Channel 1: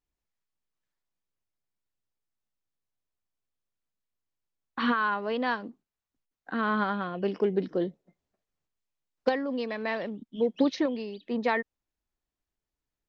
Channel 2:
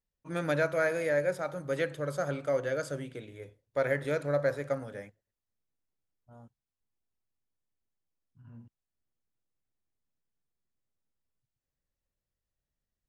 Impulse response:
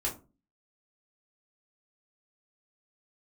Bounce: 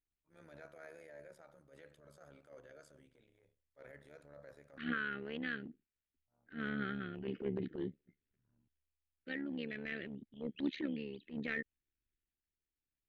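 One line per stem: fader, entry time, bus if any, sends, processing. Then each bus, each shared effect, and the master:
-1.0 dB, 0.00 s, no send, LPF 3700 Hz 6 dB/oct; band shelf 750 Hz -14 dB 1.3 oct; fixed phaser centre 2300 Hz, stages 4
-20.0 dB, 0.00 s, no send, dry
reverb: off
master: AM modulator 72 Hz, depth 65%; transient shaper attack -12 dB, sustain +3 dB; bell 140 Hz -3.5 dB 2 oct

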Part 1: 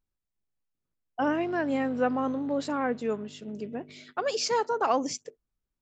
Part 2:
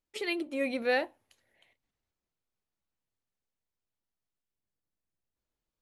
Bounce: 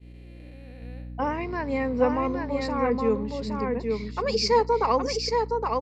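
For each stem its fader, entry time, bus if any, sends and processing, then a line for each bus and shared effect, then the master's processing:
+0.5 dB, 0.00 s, no send, echo send -4 dB, ripple EQ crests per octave 0.9, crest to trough 12 dB; hum 60 Hz, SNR 14 dB
-10.0 dB, 0.00 s, no send, no echo send, time blur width 0.82 s; auto duck -19 dB, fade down 0.20 s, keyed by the first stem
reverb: off
echo: echo 0.817 s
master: expander -38 dBFS

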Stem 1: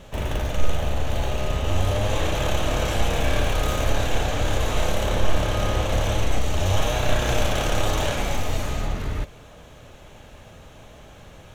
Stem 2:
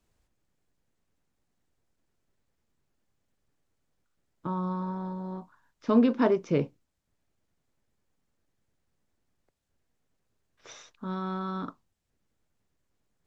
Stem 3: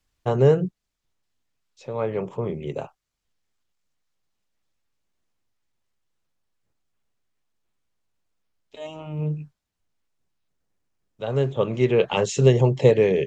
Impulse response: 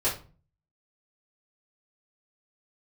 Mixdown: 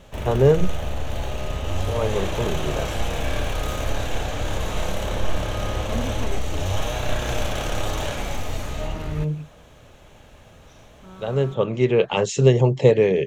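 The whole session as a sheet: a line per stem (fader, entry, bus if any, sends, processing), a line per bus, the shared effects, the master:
-3.0 dB, 0.00 s, no send, dry
-10.5 dB, 0.00 s, no send, dry
+1.0 dB, 0.00 s, no send, dry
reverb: off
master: dry

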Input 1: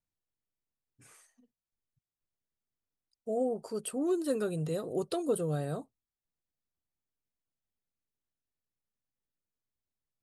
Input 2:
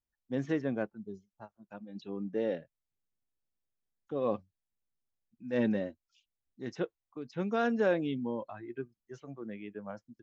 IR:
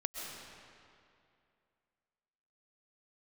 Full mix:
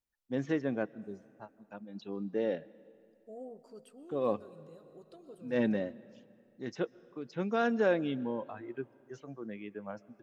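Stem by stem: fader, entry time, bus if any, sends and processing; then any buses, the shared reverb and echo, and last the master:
-16.5 dB, 0.00 s, send -12 dB, bell 10000 Hz -10.5 dB 0.7 oct; auto duck -10 dB, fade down 0.30 s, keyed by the second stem
0.0 dB, 0.00 s, send -20 dB, low shelf 150 Hz -4 dB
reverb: on, RT60 2.5 s, pre-delay 90 ms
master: dry

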